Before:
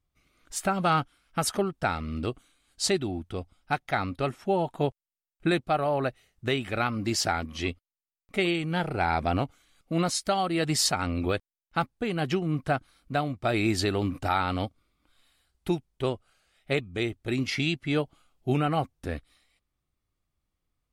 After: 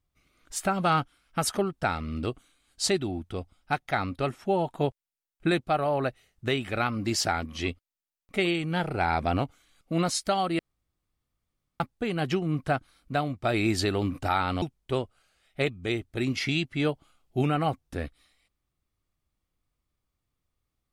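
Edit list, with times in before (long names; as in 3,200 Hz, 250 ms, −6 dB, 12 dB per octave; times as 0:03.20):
0:10.59–0:11.80: fill with room tone
0:14.62–0:15.73: remove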